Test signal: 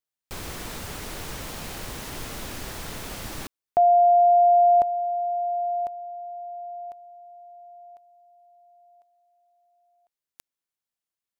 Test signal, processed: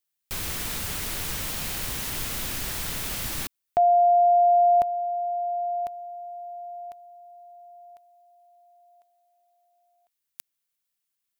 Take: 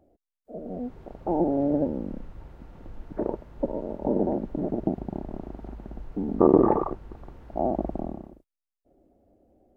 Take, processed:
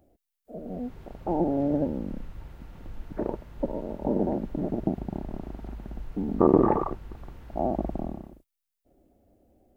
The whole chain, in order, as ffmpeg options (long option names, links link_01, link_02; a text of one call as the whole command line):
ffmpeg -i in.wav -af "bass=frequency=250:gain=6,treble=frequency=4000:gain=-9,crystalizer=i=8:c=0,volume=-4dB" out.wav